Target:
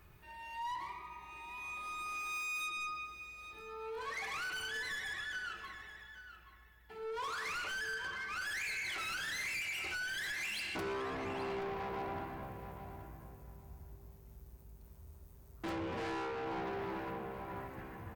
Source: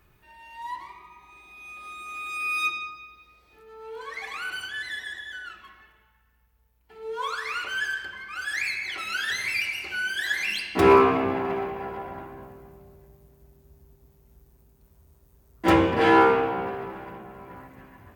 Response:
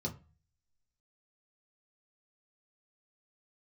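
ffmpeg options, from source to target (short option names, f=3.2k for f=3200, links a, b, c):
-filter_complex "[0:a]acompressor=threshold=-29dB:ratio=12,asoftclip=type=tanh:threshold=-36.5dB,asplit=2[a][b];[b]adelay=827,lowpass=f=4k:p=1,volume=-11dB,asplit=2[c][d];[d]adelay=827,lowpass=f=4k:p=1,volume=0.18[e];[a][c][e]amix=inputs=3:normalize=0,asplit=2[f][g];[1:a]atrim=start_sample=2205,asetrate=30429,aresample=44100[h];[g][h]afir=irnorm=-1:irlink=0,volume=-22dB[i];[f][i]amix=inputs=2:normalize=0"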